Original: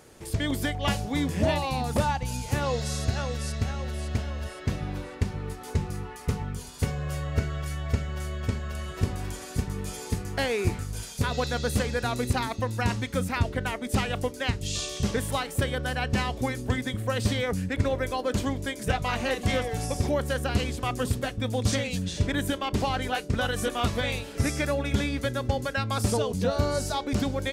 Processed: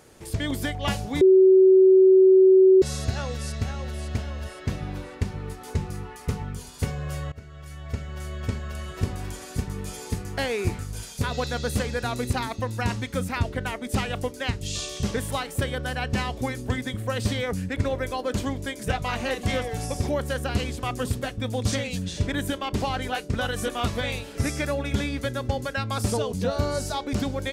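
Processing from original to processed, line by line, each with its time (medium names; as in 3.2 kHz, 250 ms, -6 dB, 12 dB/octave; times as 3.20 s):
1.21–2.82 s: bleep 378 Hz -11 dBFS
7.32–8.44 s: fade in, from -21 dB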